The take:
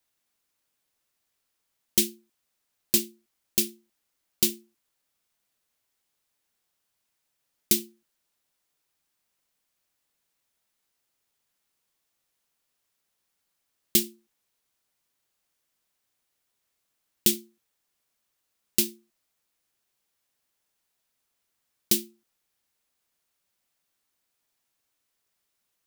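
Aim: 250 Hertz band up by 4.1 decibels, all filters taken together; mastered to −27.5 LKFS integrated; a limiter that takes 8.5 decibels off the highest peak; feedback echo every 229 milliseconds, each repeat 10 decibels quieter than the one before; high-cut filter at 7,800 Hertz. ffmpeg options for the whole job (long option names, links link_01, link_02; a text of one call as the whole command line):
ffmpeg -i in.wav -af "lowpass=7800,equalizer=frequency=250:width_type=o:gain=5.5,alimiter=limit=-16dB:level=0:latency=1,aecho=1:1:229|458|687|916:0.316|0.101|0.0324|0.0104,volume=7.5dB" out.wav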